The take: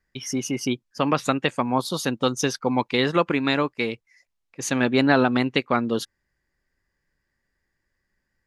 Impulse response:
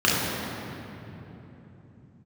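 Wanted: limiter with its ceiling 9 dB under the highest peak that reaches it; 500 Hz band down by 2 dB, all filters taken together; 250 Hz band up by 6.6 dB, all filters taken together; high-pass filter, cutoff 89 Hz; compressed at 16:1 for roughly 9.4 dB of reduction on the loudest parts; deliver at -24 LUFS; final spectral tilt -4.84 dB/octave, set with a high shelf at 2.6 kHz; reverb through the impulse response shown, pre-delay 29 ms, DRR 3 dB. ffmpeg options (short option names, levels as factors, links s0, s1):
-filter_complex "[0:a]highpass=89,equalizer=f=250:t=o:g=8.5,equalizer=f=500:t=o:g=-5.5,highshelf=f=2600:g=3,acompressor=threshold=0.1:ratio=16,alimiter=limit=0.133:level=0:latency=1,asplit=2[s0][s1];[1:a]atrim=start_sample=2205,adelay=29[s2];[s1][s2]afir=irnorm=-1:irlink=0,volume=0.075[s3];[s0][s3]amix=inputs=2:normalize=0,volume=1.06"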